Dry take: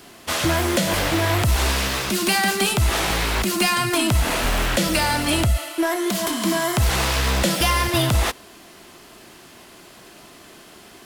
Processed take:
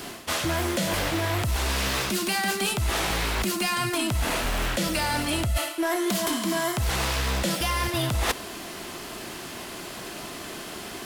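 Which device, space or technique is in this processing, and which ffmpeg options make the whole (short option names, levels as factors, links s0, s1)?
compression on the reversed sound: -af "areverse,acompressor=threshold=0.0282:ratio=12,areverse,volume=2.51"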